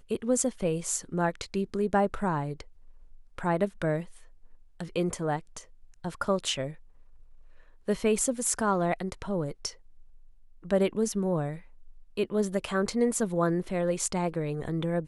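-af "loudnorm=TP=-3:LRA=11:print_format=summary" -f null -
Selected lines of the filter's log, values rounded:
Input Integrated:    -29.3 LUFS
Input True Peak:      -9.8 dBTP
Input LRA:             4.8 LU
Input Threshold:     -40.3 LUFS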